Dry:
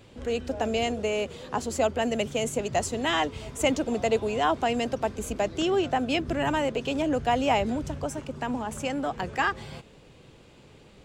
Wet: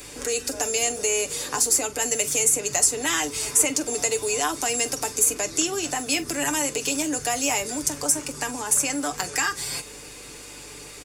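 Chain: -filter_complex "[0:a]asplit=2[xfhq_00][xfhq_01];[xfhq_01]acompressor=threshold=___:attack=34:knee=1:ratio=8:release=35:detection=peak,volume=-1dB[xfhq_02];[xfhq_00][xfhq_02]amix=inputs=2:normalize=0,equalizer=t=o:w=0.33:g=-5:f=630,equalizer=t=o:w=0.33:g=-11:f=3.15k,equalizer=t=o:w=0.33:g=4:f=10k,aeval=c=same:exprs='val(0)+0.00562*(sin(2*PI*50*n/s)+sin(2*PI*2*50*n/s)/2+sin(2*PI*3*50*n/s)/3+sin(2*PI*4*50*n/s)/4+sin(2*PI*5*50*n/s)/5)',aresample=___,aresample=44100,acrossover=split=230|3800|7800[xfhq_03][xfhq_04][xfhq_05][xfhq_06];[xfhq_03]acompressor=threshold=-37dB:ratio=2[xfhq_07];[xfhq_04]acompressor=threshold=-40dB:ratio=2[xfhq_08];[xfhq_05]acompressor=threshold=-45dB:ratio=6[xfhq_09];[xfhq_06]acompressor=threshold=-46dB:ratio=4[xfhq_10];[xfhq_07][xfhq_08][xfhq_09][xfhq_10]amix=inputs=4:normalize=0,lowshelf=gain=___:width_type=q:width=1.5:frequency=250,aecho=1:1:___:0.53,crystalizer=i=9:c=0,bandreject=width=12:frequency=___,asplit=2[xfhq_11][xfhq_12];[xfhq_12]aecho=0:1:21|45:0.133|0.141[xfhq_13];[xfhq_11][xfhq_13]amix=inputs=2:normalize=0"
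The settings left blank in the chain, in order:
-34dB, 32000, -7, 6.8, 4k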